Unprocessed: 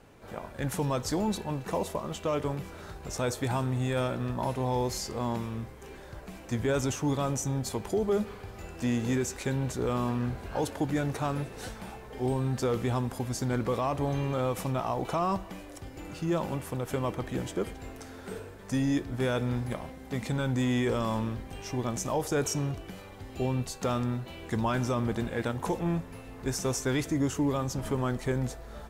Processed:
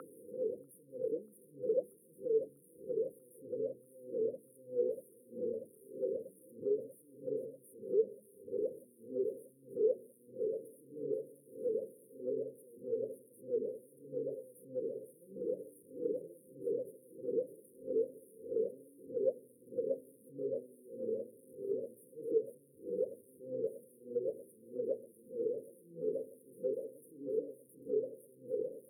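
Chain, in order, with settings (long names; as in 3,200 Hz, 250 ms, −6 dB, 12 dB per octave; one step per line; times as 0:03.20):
sign of each sample alone
high-pass filter 160 Hz 12 dB per octave
mains-hum notches 60/120/180/240/300/360/420/480 Hz
brickwall limiter −25.5 dBFS, peak gain reduction 4 dB
brick-wall band-stop 530–9,100 Hz
LFO wah 1.6 Hz 430–3,800 Hz, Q 14
delay with a low-pass on its return 640 ms, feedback 79%, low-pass 640 Hz, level −11 dB
multiband upward and downward compressor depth 40%
level +15 dB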